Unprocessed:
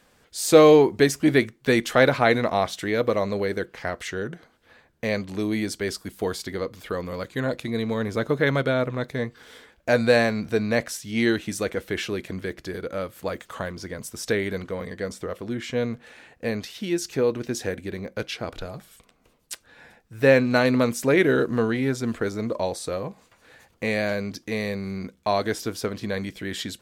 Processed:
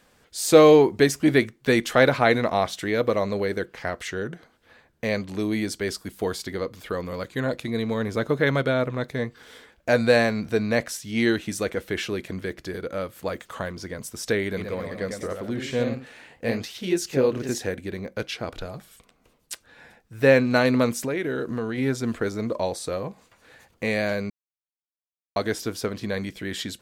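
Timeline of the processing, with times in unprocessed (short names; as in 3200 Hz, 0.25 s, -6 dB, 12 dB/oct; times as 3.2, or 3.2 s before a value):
14.44–17.63 echoes that change speed 0.132 s, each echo +1 st, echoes 2, each echo -6 dB
20.98–21.78 compressor 3:1, threshold -26 dBFS
24.3–25.36 mute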